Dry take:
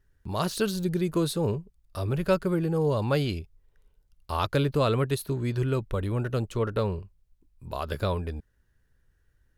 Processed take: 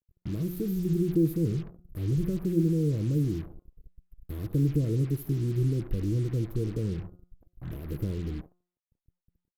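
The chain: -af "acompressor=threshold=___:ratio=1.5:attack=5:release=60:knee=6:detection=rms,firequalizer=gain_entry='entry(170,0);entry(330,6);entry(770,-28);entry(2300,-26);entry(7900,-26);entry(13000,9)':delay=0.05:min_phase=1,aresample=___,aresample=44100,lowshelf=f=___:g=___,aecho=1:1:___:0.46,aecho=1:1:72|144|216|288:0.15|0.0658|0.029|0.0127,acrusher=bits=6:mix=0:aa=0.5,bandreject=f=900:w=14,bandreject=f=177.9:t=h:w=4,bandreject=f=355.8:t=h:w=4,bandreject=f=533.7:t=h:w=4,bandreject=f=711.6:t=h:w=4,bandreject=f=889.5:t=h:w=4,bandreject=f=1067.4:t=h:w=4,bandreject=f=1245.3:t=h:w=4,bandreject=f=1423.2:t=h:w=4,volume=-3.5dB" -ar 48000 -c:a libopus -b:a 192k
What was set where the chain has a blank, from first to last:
-35dB, 32000, 240, 10.5, 6.2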